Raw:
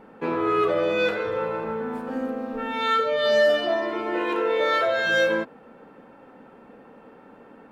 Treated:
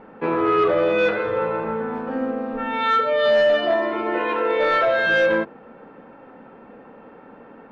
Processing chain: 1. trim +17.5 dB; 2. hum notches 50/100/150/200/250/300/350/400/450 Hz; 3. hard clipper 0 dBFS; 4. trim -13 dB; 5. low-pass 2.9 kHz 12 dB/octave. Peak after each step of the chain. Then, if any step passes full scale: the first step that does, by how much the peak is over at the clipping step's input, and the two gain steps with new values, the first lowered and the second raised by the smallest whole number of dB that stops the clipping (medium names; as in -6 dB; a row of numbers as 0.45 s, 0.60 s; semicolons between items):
+7.0 dBFS, +7.0 dBFS, 0.0 dBFS, -13.0 dBFS, -12.5 dBFS; step 1, 7.0 dB; step 1 +10.5 dB, step 4 -6 dB